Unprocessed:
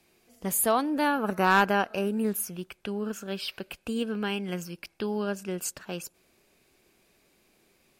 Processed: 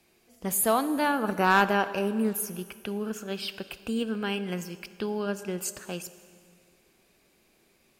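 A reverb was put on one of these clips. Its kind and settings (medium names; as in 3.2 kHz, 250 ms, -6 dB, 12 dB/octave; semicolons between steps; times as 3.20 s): plate-style reverb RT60 2.1 s, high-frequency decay 0.95×, DRR 12.5 dB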